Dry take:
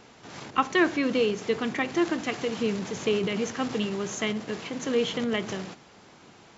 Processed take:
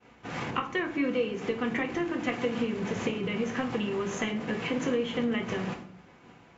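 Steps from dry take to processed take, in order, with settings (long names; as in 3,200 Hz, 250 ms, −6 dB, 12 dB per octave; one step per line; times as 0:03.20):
downward compressor 10 to 1, threshold −34 dBFS, peak gain reduction 17.5 dB
high shelf with overshoot 3,300 Hz −7 dB, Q 1.5
downward expander −44 dBFS
parametric band 63 Hz +6 dB 1.7 octaves
convolution reverb RT60 0.50 s, pre-delay 4 ms, DRR 2 dB
level +4.5 dB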